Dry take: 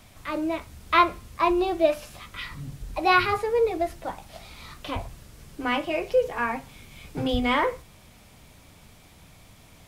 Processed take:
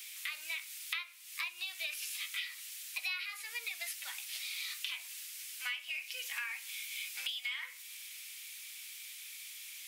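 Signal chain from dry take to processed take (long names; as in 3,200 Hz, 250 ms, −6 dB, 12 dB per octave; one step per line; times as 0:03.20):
Chebyshev high-pass filter 2,300 Hz, order 3
high-shelf EQ 11,000 Hz +8 dB
downward compressor 16 to 1, threshold −44 dBFS, peak gain reduction 22 dB
level +8.5 dB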